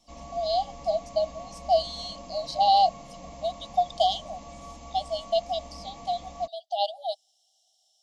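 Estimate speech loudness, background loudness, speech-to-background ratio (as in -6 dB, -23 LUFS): -28.0 LUFS, -44.5 LUFS, 16.5 dB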